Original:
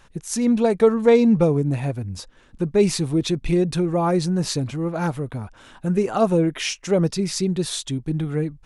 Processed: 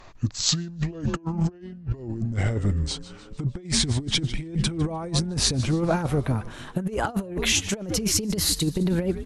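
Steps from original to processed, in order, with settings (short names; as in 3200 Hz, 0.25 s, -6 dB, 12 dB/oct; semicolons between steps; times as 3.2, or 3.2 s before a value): speed glide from 67% -> 120%; frequency-shifting echo 0.151 s, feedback 53%, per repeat -130 Hz, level -17 dB; negative-ratio compressor -25 dBFS, ratio -0.5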